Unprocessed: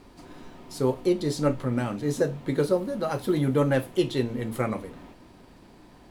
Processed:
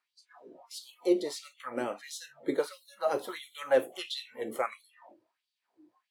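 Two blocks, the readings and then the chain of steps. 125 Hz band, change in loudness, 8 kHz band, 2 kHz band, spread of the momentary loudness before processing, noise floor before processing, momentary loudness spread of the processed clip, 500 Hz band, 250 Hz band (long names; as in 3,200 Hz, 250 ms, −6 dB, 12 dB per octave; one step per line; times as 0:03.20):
−29.5 dB, −6.5 dB, −3.5 dB, −4.0 dB, 6 LU, −52 dBFS, 14 LU, −5.5 dB, −10.5 dB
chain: auto-filter high-pass sine 1.5 Hz 370–4,000 Hz
noise reduction from a noise print of the clip's start 22 dB
level −4.5 dB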